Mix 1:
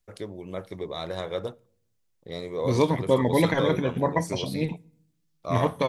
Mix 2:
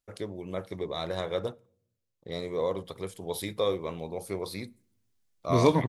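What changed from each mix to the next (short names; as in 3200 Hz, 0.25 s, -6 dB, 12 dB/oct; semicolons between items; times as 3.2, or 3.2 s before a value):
second voice: entry +2.85 s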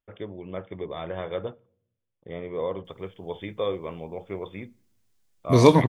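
first voice: add brick-wall FIR low-pass 3600 Hz; second voice +7.0 dB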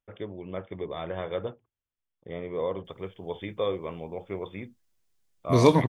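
first voice: send off; second voice -3.5 dB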